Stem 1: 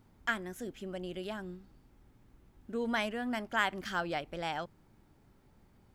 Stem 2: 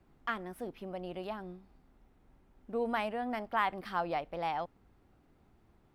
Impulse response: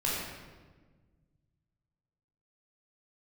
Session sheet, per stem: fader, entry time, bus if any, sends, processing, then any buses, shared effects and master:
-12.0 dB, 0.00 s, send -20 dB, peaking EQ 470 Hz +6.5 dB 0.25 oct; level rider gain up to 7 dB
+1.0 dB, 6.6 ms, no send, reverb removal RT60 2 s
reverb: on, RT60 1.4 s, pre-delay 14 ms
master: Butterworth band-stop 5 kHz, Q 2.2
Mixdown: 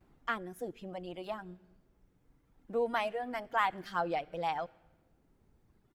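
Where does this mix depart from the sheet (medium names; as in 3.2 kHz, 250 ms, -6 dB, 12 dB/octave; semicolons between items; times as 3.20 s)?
stem 1 -12.0 dB -> -18.5 dB; master: missing Butterworth band-stop 5 kHz, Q 2.2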